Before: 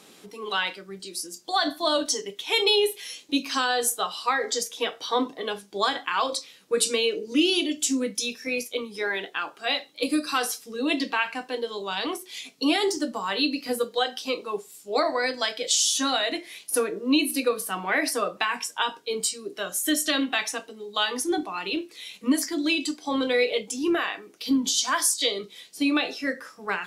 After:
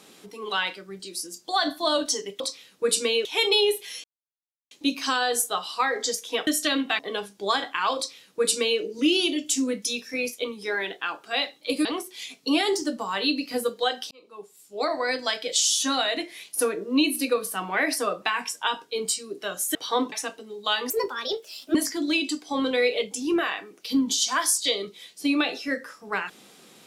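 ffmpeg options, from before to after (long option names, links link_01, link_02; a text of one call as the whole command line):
ffmpeg -i in.wav -filter_complex "[0:a]asplit=12[link_01][link_02][link_03][link_04][link_05][link_06][link_07][link_08][link_09][link_10][link_11][link_12];[link_01]atrim=end=2.402[link_13];[link_02]atrim=start=6.288:end=7.142[link_14];[link_03]atrim=start=2.398:end=3.19,asetpts=PTS-STARTPTS,afade=type=out:start_time=0.788:duration=0.004:curve=hsin,apad=pad_dur=0.67[link_15];[link_04]atrim=start=3.19:end=4.952,asetpts=PTS-STARTPTS,afade=type=in:duration=0.004:curve=hsin[link_16];[link_05]atrim=start=19.898:end=20.422[link_17];[link_06]atrim=start=5.318:end=10.182[link_18];[link_07]atrim=start=11.998:end=14.26,asetpts=PTS-STARTPTS,afade=type=out:start_time=2.258:duration=0.004:curve=hsin[link_19];[link_08]atrim=start=14.26:end=19.902,asetpts=PTS-STARTPTS,afade=type=in:duration=1.04[link_20];[link_09]atrim=start=4.948:end=5.322[link_21];[link_10]atrim=start=20.418:end=21.204[link_22];[link_11]atrim=start=21.2:end=22.31,asetpts=PTS-STARTPTS,asetrate=57771,aresample=44100,atrim=end_sample=37367,asetpts=PTS-STARTPTS[link_23];[link_12]atrim=start=22.306[link_24];[link_13][link_14]acrossfade=duration=0.004:curve1=hsin:curve2=hsin[link_25];[link_15][link_16]concat=n=2:v=0:a=1[link_26];[link_25][link_26]acrossfade=duration=0.004:curve1=hsin:curve2=hsin[link_27];[link_27][link_17]acrossfade=duration=0.004:curve1=hsin:curve2=hsin[link_28];[link_28][link_18]acrossfade=duration=0.004:curve1=hsin:curve2=hsin[link_29];[link_19][link_20]concat=n=2:v=0:a=1[link_30];[link_29][link_30]acrossfade=duration=0.004:curve1=hsin:curve2=hsin[link_31];[link_31][link_21]acrossfade=duration=0.004:curve1=hsin:curve2=hsin[link_32];[link_32][link_22]acrossfade=duration=0.004:curve1=hsin:curve2=hsin[link_33];[link_33][link_23]acrossfade=duration=0.004:curve1=hsin:curve2=hsin[link_34];[link_34][link_24]acrossfade=duration=0.004:curve1=hsin:curve2=hsin" out.wav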